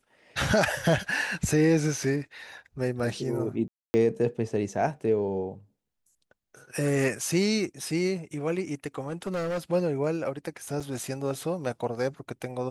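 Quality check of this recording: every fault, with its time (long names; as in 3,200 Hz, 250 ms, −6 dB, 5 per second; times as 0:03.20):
0:03.68–0:03.94: drop-out 260 ms
0:09.08–0:09.59: clipping −26.5 dBFS
0:10.80–0:10.81: drop-out 5.6 ms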